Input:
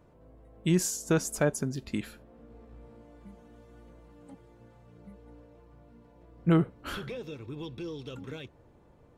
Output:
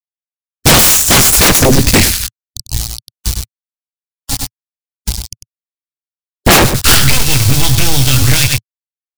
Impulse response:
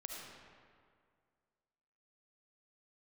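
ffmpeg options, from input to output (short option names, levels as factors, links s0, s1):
-filter_complex "[0:a]agate=range=0.0224:threshold=0.00501:ratio=3:detection=peak,highshelf=f=3000:t=q:w=1.5:g=-11,asplit=2[s0][s1];[s1]adelay=22,volume=0.473[s2];[s0][s2]amix=inputs=2:normalize=0,aeval=exprs='val(0)*gte(abs(val(0)),0.00501)':c=same,aeval=exprs='0.282*(cos(1*acos(clip(val(0)/0.282,-1,1)))-cos(1*PI/2))+0.126*(cos(6*acos(clip(val(0)/0.282,-1,1)))-cos(6*PI/2))':c=same,firequalizer=gain_entry='entry(110,0);entry(180,-18);entry(440,-23);entry(730,-15);entry(4500,8);entry(9300,11)':delay=0.05:min_phase=1,aeval=exprs='0.0668*sin(PI/2*5.01*val(0)/0.0668)':c=same,afftdn=nr=31:nf=-54,asplit=2[s3][s4];[s4]aecho=0:1:98:0.237[s5];[s3][s5]amix=inputs=2:normalize=0,alimiter=level_in=42.2:limit=0.891:release=50:level=0:latency=1,volume=0.891"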